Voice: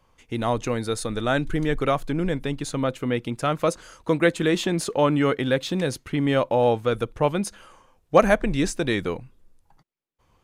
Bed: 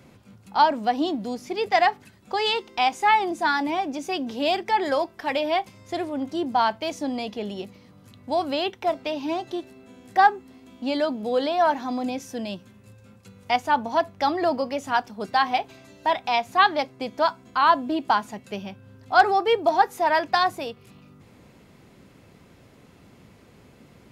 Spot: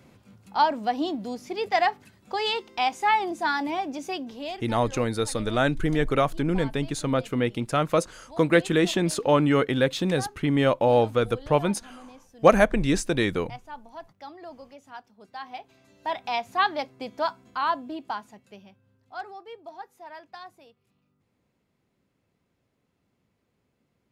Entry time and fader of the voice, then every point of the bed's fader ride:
4.30 s, 0.0 dB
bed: 0:04.09 −3 dB
0:04.87 −19.5 dB
0:15.26 −19.5 dB
0:16.22 −5 dB
0:17.39 −5 dB
0:19.44 −22 dB

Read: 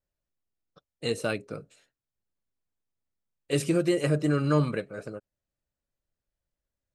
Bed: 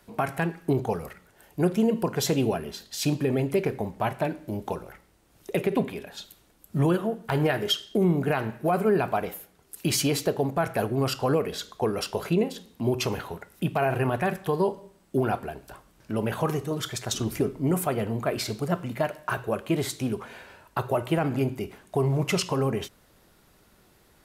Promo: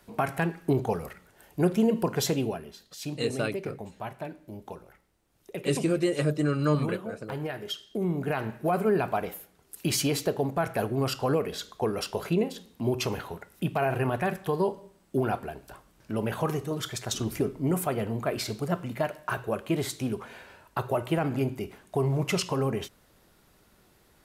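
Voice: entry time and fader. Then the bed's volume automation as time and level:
2.15 s, −1.0 dB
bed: 0:02.20 −0.5 dB
0:02.76 −10 dB
0:07.68 −10 dB
0:08.51 −2 dB

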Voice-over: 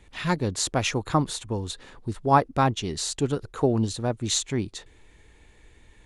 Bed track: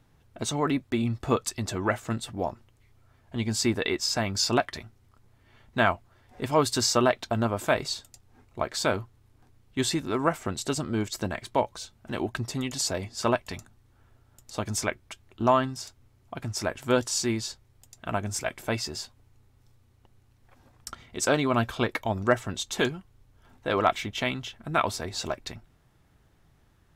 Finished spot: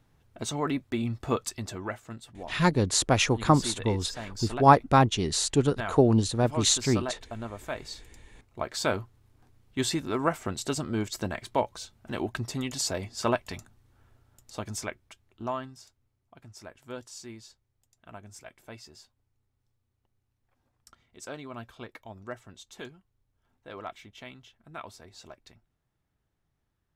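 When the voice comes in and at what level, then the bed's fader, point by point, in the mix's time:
2.35 s, +2.0 dB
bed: 0:01.51 −3 dB
0:02.09 −11.5 dB
0:07.65 −11.5 dB
0:08.88 −1.5 dB
0:14.11 −1.5 dB
0:16.30 −16.5 dB

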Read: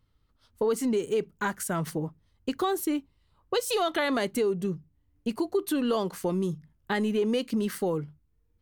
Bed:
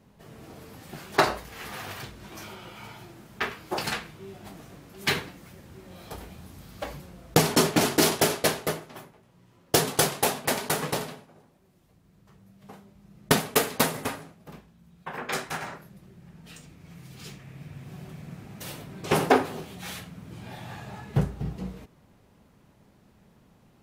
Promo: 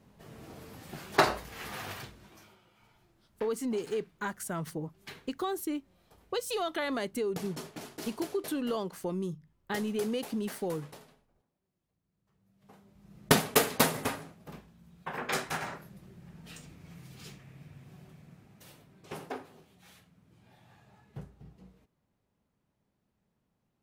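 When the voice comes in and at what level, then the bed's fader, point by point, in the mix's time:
2.80 s, −6.0 dB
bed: 0:01.93 −2.5 dB
0:02.66 −21.5 dB
0:12.19 −21.5 dB
0:13.14 −1.5 dB
0:16.74 −1.5 dB
0:19.29 −20 dB

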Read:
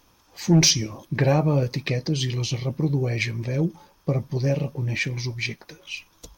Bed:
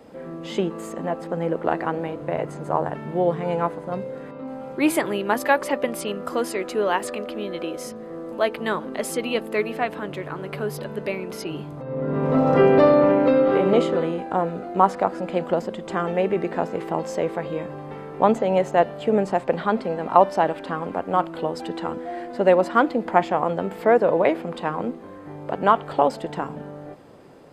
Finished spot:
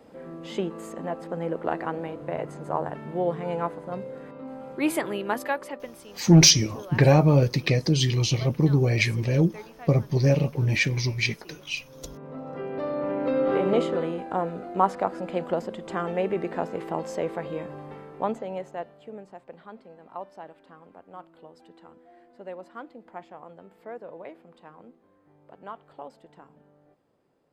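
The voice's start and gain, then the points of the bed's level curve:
5.80 s, +2.5 dB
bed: 0:05.29 −5 dB
0:06.13 −19.5 dB
0:12.64 −19.5 dB
0:13.50 −4.5 dB
0:17.82 −4.5 dB
0:19.26 −22.5 dB

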